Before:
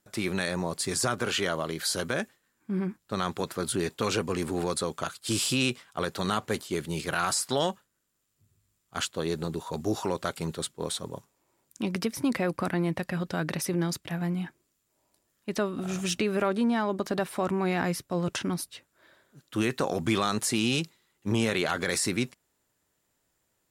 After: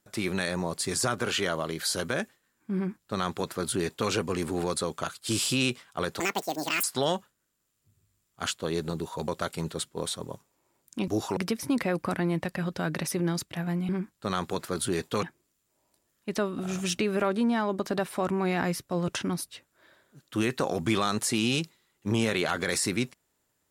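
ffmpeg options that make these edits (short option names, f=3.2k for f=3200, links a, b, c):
-filter_complex "[0:a]asplit=8[a][b][c][d][e][f][g][h];[a]atrim=end=6.204[i];[b]atrim=start=6.2:end=7.38,asetpts=PTS-STARTPTS,asetrate=81585,aresample=44100[j];[c]atrim=start=7.376:end=9.822[k];[d]atrim=start=10.108:end=11.912[l];[e]atrim=start=9.818:end=10.112[m];[f]atrim=start=11.908:end=14.432[n];[g]atrim=start=2.758:end=4.102[o];[h]atrim=start=14.428[p];[i][j]acrossfade=d=0.004:c1=hsin:c2=hsin[q];[q][k]acrossfade=d=0.004:c1=hsin:c2=hsin[r];[r][l]acrossfade=d=0.004:c1=hsin:c2=hsin[s];[s][m]acrossfade=d=0.004:c1=hsin:c2=hsin[t];[t][n]acrossfade=d=0.004:c1=hsin:c2=hsin[u];[u][o]acrossfade=d=0.004:c1=hsin:c2=hsin[v];[v][p]acrossfade=d=0.004:c1=hsin:c2=hsin"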